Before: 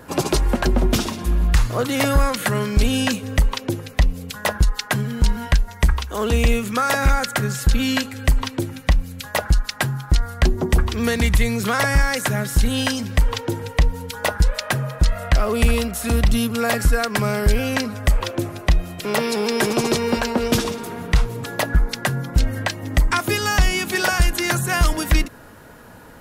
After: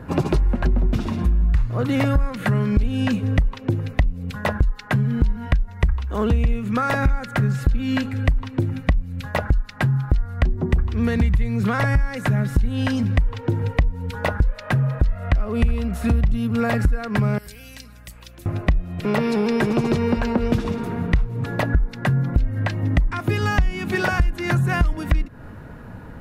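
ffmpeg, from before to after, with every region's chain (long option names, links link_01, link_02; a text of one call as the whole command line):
ffmpeg -i in.wav -filter_complex "[0:a]asettb=1/sr,asplit=3[link_01][link_02][link_03];[link_01]atrim=end=17.384[link_04];[link_02]atrim=start=17.38:end=18.46,asetpts=PTS-STARTPTS,afade=type=in:duration=0.004:curve=qsin,afade=type=out:start_time=1.076:duration=0.004:curve=qsin,aderivative,acrossover=split=480|3000[link_05][link_06][link_07];[link_06]acompressor=threshold=-49dB:ratio=2.5:attack=3.2:release=140:knee=2.83:detection=peak[link_08];[link_05][link_08][link_07]amix=inputs=3:normalize=0,aeval=exprs='val(0)+0.002*(sin(2*PI*60*n/s)+sin(2*PI*2*60*n/s)/2+sin(2*PI*3*60*n/s)/3+sin(2*PI*4*60*n/s)/4+sin(2*PI*5*60*n/s)/5)':channel_layout=same[link_09];[link_03]atrim=start=18.456[link_10];[link_04][link_09]acrossfade=duration=0.004:curve1=hsin:curve2=qsin[link_11];[link_11][link_10]acrossfade=duration=0.004:curve1=qsin:curve2=hsin,bass=frequency=250:gain=11,treble=frequency=4000:gain=-14,bandreject=frequency=3200:width=23,acompressor=threshold=-16dB:ratio=6" out.wav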